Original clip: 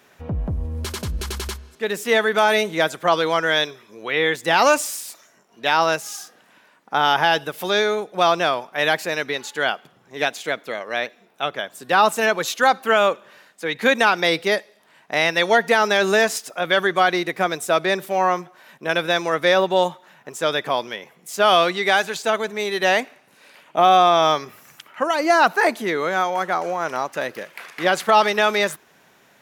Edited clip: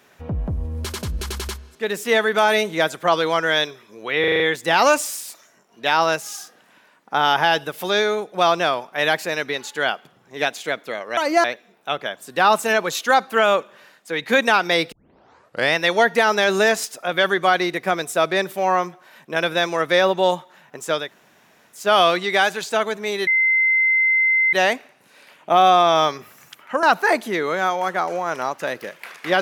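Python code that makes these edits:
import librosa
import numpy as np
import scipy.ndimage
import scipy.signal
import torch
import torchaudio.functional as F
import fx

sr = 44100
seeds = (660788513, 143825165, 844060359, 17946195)

y = fx.edit(x, sr, fx.stutter(start_s=4.2, slice_s=0.04, count=6),
    fx.tape_start(start_s=14.45, length_s=0.83),
    fx.room_tone_fill(start_s=20.56, length_s=0.75, crossfade_s=0.24),
    fx.insert_tone(at_s=22.8, length_s=1.26, hz=2070.0, db=-14.0),
    fx.move(start_s=25.1, length_s=0.27, to_s=10.97), tone=tone)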